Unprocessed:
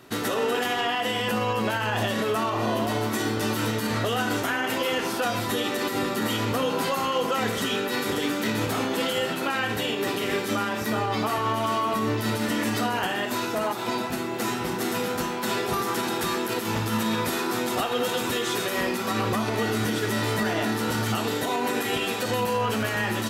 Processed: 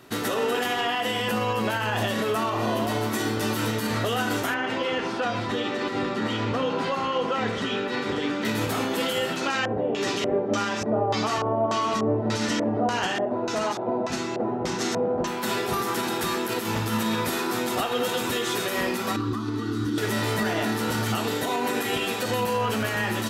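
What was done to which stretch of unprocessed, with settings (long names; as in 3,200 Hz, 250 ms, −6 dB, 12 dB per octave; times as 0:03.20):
0:04.54–0:08.45: high-frequency loss of the air 130 metres
0:09.36–0:15.27: auto-filter low-pass square 1.7 Hz 640–6,200 Hz
0:19.16–0:19.98: drawn EQ curve 110 Hz 0 dB, 200 Hz −11 dB, 280 Hz +10 dB, 590 Hz −24 dB, 1,200 Hz −3 dB, 2,300 Hz −17 dB, 3,900 Hz −6 dB, 7,600 Hz −12 dB, 12,000 Hz −17 dB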